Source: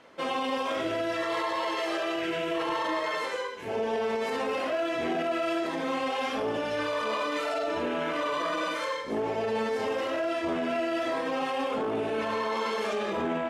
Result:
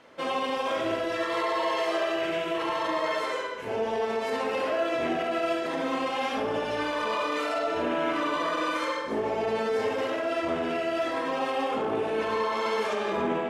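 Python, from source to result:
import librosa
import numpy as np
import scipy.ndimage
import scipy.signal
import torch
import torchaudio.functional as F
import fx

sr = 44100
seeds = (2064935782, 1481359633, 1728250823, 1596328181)

y = fx.echo_filtered(x, sr, ms=70, feedback_pct=74, hz=2800.0, wet_db=-5.5)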